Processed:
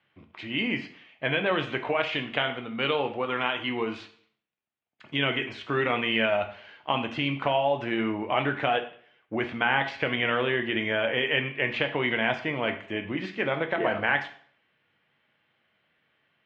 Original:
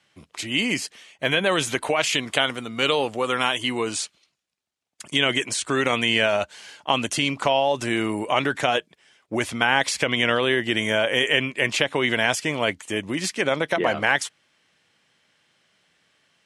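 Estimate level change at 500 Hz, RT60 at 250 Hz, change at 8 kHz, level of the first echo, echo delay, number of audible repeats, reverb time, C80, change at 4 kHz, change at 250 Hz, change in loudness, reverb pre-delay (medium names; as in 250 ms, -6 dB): -4.0 dB, 0.50 s, under -30 dB, no echo, no echo, no echo, 0.55 s, 15.0 dB, -8.0 dB, -3.5 dB, -5.0 dB, 4 ms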